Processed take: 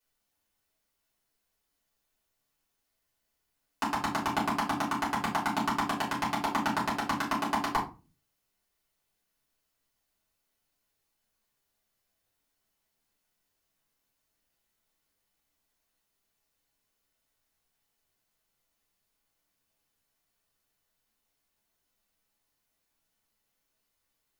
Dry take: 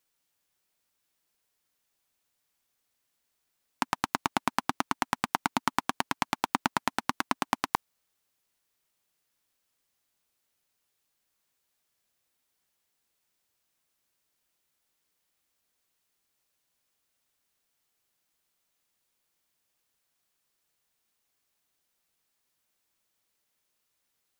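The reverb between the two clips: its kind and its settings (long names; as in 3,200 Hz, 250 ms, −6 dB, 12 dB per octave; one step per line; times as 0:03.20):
rectangular room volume 140 cubic metres, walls furnished, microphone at 5 metres
level −10.5 dB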